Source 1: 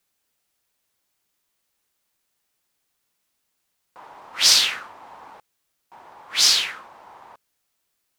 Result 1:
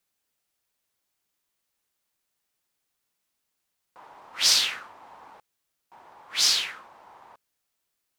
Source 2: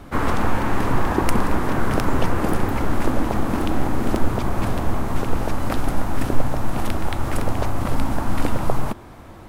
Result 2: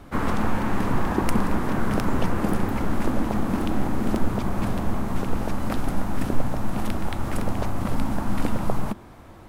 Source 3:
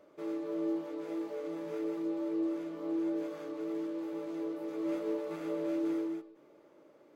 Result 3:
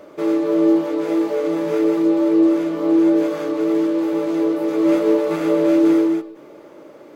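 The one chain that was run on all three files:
dynamic bell 200 Hz, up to +7 dB, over -42 dBFS, Q 2.9; peak normalisation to -6 dBFS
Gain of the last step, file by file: -5.0 dB, -4.5 dB, +18.5 dB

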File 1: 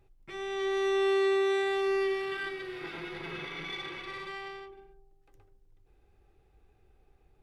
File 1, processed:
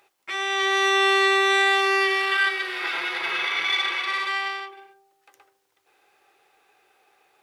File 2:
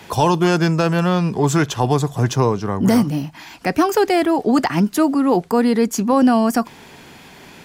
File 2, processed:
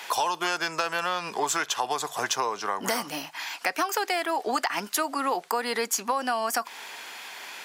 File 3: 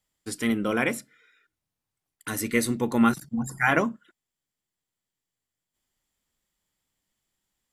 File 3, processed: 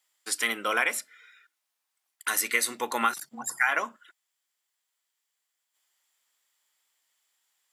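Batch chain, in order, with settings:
high-pass 890 Hz 12 dB/octave; compression 10:1, threshold -27 dBFS; peak normalisation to -9 dBFS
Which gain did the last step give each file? +16.0 dB, +4.0 dB, +7.0 dB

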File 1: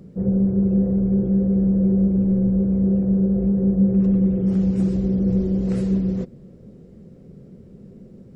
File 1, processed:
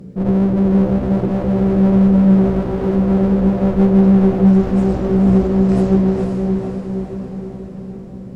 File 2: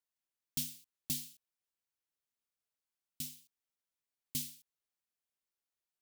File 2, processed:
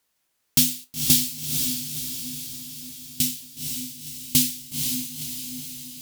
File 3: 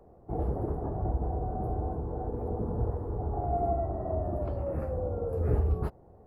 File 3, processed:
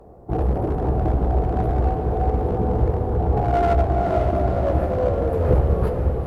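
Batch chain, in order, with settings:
feedback comb 63 Hz, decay 0.18 s, harmonics all, mix 70%; one-sided clip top -33 dBFS; echo that smears into a reverb 498 ms, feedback 57%, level -4.5 dB; peak normalisation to -3 dBFS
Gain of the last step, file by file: +10.5 dB, +23.0 dB, +14.0 dB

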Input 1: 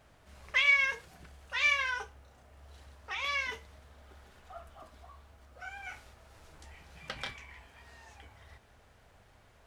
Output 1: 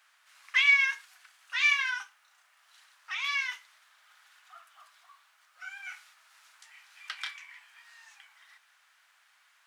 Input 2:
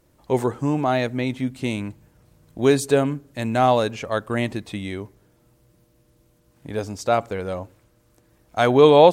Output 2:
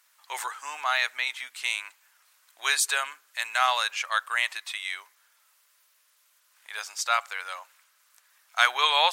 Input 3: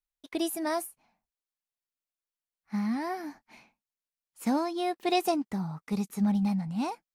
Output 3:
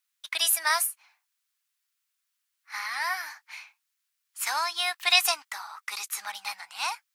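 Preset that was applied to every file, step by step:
high-pass 1.2 kHz 24 dB/octave; normalise loudness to -27 LUFS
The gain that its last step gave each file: +3.0 dB, +5.5 dB, +14.0 dB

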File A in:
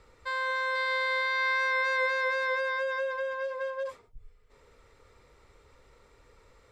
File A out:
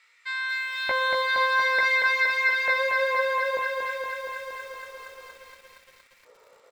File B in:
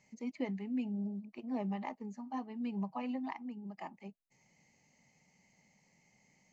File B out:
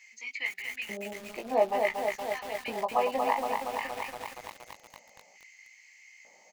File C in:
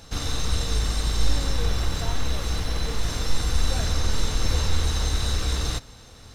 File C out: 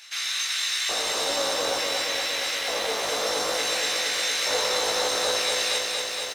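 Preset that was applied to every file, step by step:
LFO high-pass square 0.56 Hz 560–2100 Hz; doubling 18 ms -4 dB; bit-crushed delay 234 ms, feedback 80%, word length 9-bit, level -4 dB; peak normalisation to -12 dBFS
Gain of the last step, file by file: +0.5 dB, +10.5 dB, +1.5 dB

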